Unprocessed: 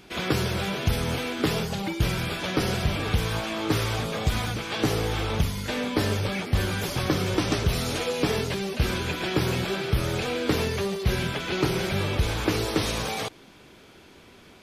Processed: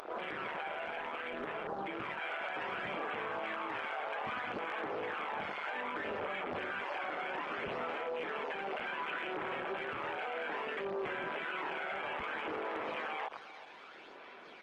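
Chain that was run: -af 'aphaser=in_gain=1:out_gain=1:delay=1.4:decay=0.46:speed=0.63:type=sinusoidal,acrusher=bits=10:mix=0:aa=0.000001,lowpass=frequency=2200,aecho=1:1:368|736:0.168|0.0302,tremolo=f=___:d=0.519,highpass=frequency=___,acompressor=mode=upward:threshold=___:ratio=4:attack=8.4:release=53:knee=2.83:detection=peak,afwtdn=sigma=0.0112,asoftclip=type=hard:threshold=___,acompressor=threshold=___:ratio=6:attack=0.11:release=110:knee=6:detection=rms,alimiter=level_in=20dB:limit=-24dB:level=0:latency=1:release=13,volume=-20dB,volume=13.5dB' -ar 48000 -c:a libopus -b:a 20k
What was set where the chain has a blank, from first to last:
150, 670, -45dB, -18.5dB, -39dB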